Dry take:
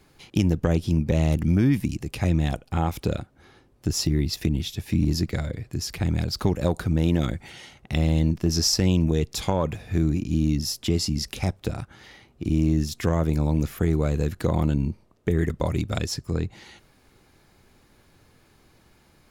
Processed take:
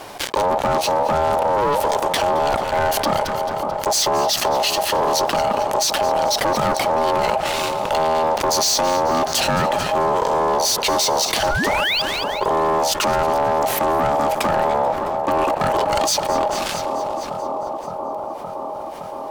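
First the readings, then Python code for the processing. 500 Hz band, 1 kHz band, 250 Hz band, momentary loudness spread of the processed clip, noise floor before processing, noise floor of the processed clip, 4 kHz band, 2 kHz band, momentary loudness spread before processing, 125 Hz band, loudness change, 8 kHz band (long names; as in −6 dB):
+12.0 dB, +20.5 dB, −4.5 dB, 8 LU, −59 dBFS, −29 dBFS, +10.0 dB, +13.0 dB, 9 LU, −10.5 dB, +5.5 dB, +10.5 dB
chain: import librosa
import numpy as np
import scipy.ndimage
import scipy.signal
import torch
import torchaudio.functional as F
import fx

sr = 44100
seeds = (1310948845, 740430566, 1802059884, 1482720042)

y = fx.hum_notches(x, sr, base_hz=60, count=2)
y = fx.dynamic_eq(y, sr, hz=3900.0, q=1.4, threshold_db=-45.0, ratio=4.0, max_db=4)
y = fx.spec_paint(y, sr, seeds[0], shape='rise', start_s=11.47, length_s=0.55, low_hz=570.0, high_hz=4300.0, level_db=-34.0)
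y = fx.leveller(y, sr, passes=5)
y = fx.echo_split(y, sr, split_hz=520.0, low_ms=566, high_ms=219, feedback_pct=52, wet_db=-15)
y = y * np.sin(2.0 * np.pi * 720.0 * np.arange(len(y)) / sr)
y = fx.env_flatten(y, sr, amount_pct=70)
y = y * librosa.db_to_amplitude(-5.5)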